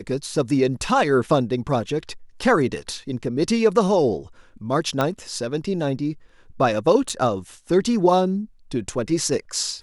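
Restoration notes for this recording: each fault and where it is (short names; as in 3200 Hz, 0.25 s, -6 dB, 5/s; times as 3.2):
5.01 pop -9 dBFS
7.09–7.1 gap 6 ms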